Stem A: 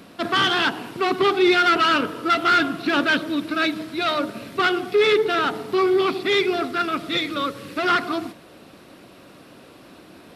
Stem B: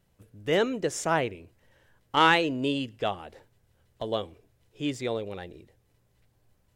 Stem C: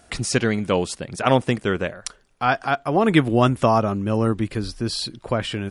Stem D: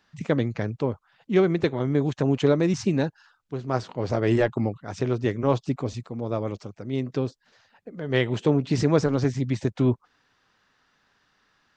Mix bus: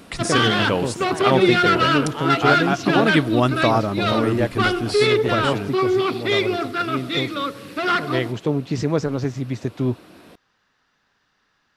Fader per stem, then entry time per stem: -0.5, -9.0, -1.5, -0.5 dB; 0.00, 0.00, 0.00, 0.00 s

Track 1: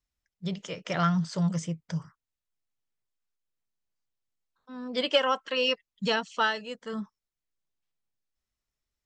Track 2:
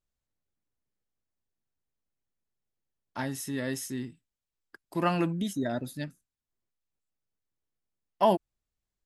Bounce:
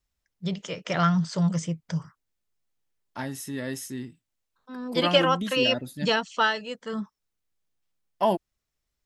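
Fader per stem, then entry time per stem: +3.0, 0.0 dB; 0.00, 0.00 s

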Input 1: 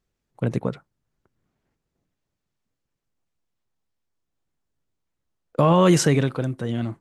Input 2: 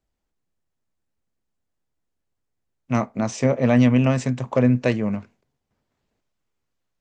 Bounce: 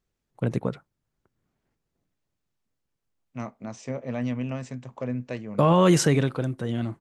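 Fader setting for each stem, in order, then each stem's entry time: -2.0, -13.0 dB; 0.00, 0.45 s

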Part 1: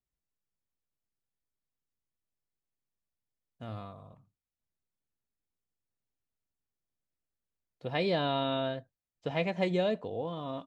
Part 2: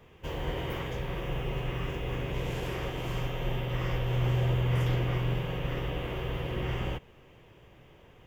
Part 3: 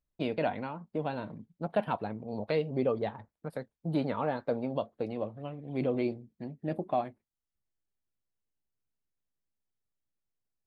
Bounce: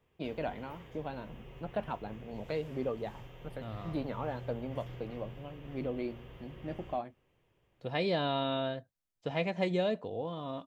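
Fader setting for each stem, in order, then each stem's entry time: -1.5, -17.5, -6.0 dB; 0.00, 0.00, 0.00 s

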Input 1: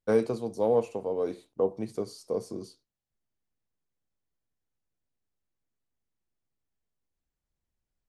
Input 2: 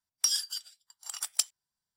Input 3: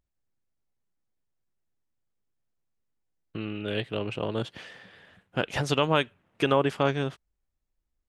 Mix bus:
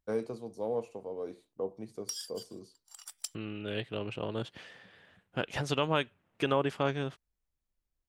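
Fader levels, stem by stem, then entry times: -9.0, -12.0, -5.5 dB; 0.00, 1.85, 0.00 s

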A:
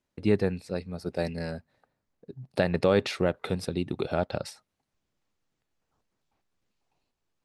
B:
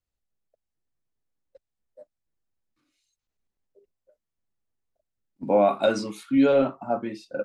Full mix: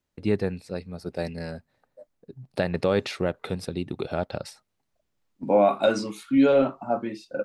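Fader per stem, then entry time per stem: -0.5, +0.5 dB; 0.00, 0.00 s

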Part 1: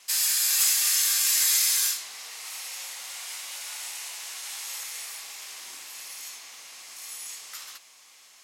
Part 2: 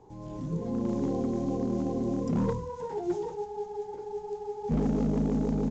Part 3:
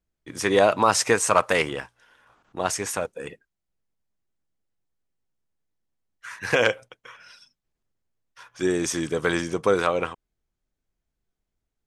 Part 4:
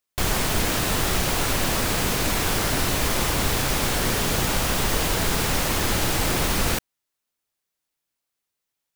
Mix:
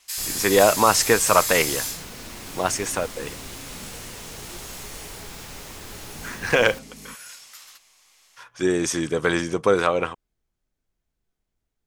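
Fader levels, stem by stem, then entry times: -4.5, -18.0, +2.0, -17.0 dB; 0.00, 1.45, 0.00, 0.00 s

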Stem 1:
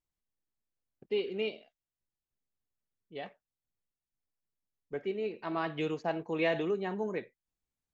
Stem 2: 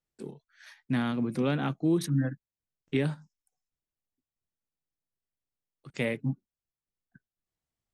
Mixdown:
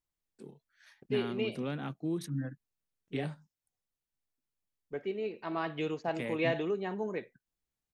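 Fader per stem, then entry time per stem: -1.0, -8.5 dB; 0.00, 0.20 s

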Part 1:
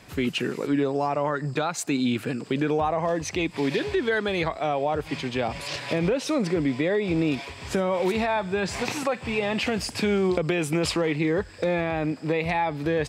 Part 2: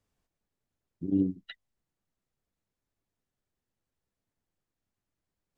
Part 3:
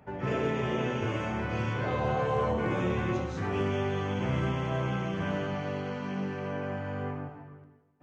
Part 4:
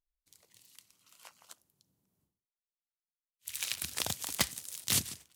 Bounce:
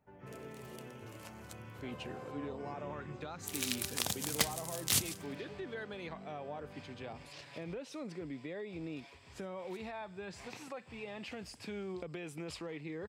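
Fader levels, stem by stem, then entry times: -19.0 dB, off, -19.0 dB, -1.0 dB; 1.65 s, off, 0.00 s, 0.00 s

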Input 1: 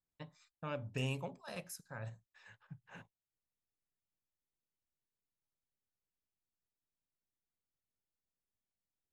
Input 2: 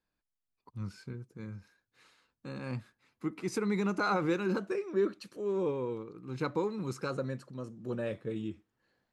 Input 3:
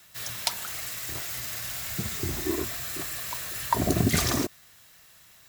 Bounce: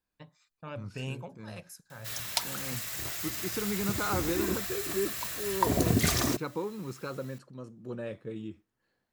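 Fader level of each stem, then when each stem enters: -0.5, -2.5, -2.0 dB; 0.00, 0.00, 1.90 s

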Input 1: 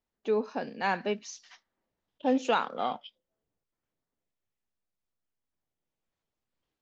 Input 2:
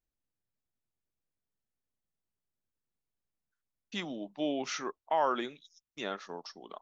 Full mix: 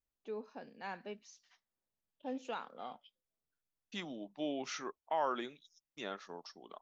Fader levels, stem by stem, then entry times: -15.0, -5.5 dB; 0.00, 0.00 s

